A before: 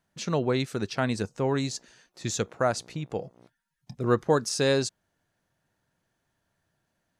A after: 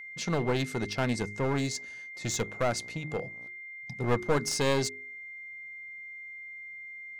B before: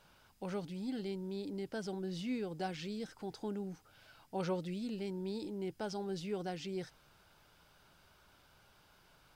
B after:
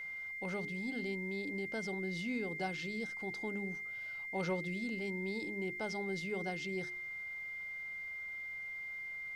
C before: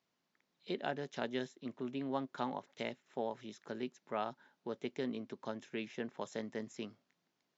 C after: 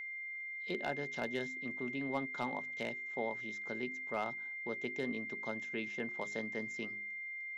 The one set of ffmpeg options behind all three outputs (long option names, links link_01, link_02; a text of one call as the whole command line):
ffmpeg -i in.wav -af "aeval=exprs='clip(val(0),-1,0.0398)':channel_layout=same,bandreject=frequency=51.49:width_type=h:width=4,bandreject=frequency=102.98:width_type=h:width=4,bandreject=frequency=154.47:width_type=h:width=4,bandreject=frequency=205.96:width_type=h:width=4,bandreject=frequency=257.45:width_type=h:width=4,bandreject=frequency=308.94:width_type=h:width=4,bandreject=frequency=360.43:width_type=h:width=4,bandreject=frequency=411.92:width_type=h:width=4,aeval=exprs='val(0)+0.00891*sin(2*PI*2100*n/s)':channel_layout=same" out.wav